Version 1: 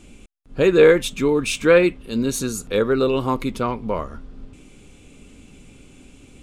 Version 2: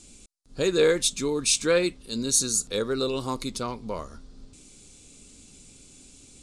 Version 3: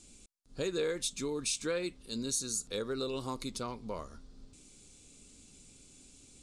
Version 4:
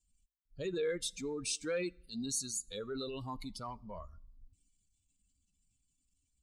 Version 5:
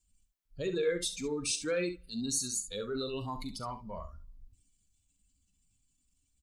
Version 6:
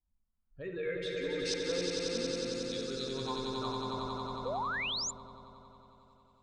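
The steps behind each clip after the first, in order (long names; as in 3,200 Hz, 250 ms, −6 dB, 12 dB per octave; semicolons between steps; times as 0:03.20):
flat-topped bell 6,300 Hz +15.5 dB; level −8.5 dB
downward compressor 2.5 to 1, threshold −26 dBFS, peak gain reduction 7 dB; level −6.5 dB
spectral dynamics exaggerated over time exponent 2; transient designer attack −4 dB, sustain +5 dB; on a send at −23 dB: convolution reverb RT60 0.60 s, pre-delay 7 ms; on the sum: level +1.5 dB
ambience of single reflections 40 ms −13 dB, 68 ms −11 dB; level +3.5 dB
auto-filter low-pass saw up 0.65 Hz 820–5,000 Hz; echo that builds up and dies away 91 ms, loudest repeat 5, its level −4.5 dB; sound drawn into the spectrogram rise, 0:04.45–0:05.11, 460–7,500 Hz −28 dBFS; level −7.5 dB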